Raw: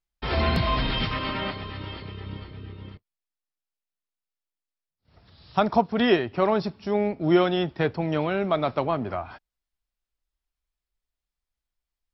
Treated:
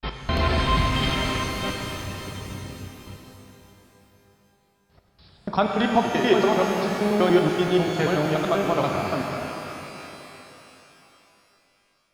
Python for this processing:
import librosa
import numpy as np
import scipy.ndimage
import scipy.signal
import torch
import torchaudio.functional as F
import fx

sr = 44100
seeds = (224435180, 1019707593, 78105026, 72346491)

y = fx.block_reorder(x, sr, ms=96.0, group=3)
y = fx.rev_shimmer(y, sr, seeds[0], rt60_s=3.4, semitones=12, shimmer_db=-8, drr_db=1.5)